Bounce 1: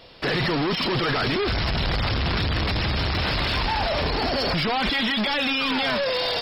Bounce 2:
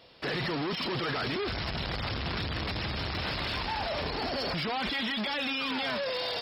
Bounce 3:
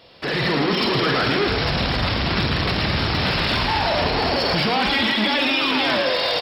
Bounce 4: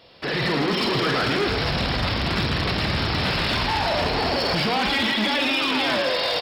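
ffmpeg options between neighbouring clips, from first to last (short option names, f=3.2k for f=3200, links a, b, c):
-af "highpass=f=78:p=1,volume=-8dB"
-filter_complex "[0:a]dynaudnorm=f=220:g=3:m=4dB,asplit=2[a][b];[b]adelay=47,volume=-8dB[c];[a][c]amix=inputs=2:normalize=0,asplit=9[d][e][f][g][h][i][j][k][l];[e]adelay=111,afreqshift=41,volume=-6.5dB[m];[f]adelay=222,afreqshift=82,volume=-10.8dB[n];[g]adelay=333,afreqshift=123,volume=-15.1dB[o];[h]adelay=444,afreqshift=164,volume=-19.4dB[p];[i]adelay=555,afreqshift=205,volume=-23.7dB[q];[j]adelay=666,afreqshift=246,volume=-28dB[r];[k]adelay=777,afreqshift=287,volume=-32.3dB[s];[l]adelay=888,afreqshift=328,volume=-36.6dB[t];[d][m][n][o][p][q][r][s][t]amix=inputs=9:normalize=0,volume=6dB"
-af "asoftclip=type=hard:threshold=-14.5dB,volume=-2dB"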